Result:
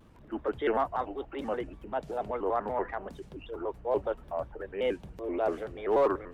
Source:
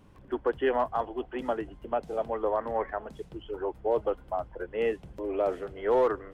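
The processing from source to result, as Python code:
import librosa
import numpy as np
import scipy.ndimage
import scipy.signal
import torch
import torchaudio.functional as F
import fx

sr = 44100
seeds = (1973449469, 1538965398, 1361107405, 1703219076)

y = fx.transient(x, sr, attack_db=-6, sustain_db=1)
y = fx.vibrato_shape(y, sr, shape='square', rate_hz=5.2, depth_cents=160.0)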